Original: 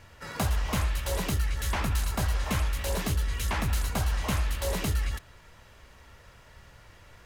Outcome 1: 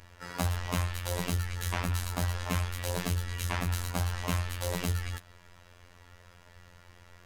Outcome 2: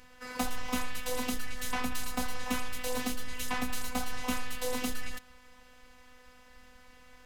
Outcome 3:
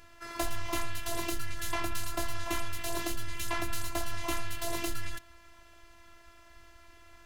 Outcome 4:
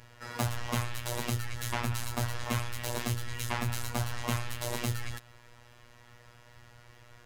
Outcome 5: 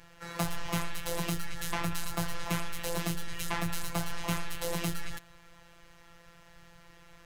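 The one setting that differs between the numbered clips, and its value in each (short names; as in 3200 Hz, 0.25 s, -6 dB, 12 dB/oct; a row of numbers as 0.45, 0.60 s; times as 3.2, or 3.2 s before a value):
robotiser, frequency: 88, 250, 340, 120, 170 Hz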